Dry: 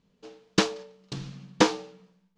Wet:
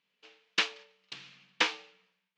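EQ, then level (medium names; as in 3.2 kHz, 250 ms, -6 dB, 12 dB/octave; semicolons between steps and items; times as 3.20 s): band-pass filter 2.5 kHz, Q 1.9; +4.0 dB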